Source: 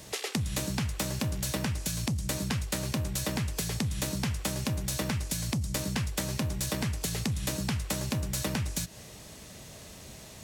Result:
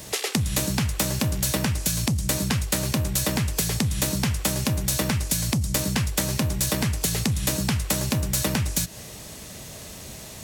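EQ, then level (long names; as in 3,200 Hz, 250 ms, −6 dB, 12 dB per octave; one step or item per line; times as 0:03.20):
high-shelf EQ 9,900 Hz +6.5 dB
+6.5 dB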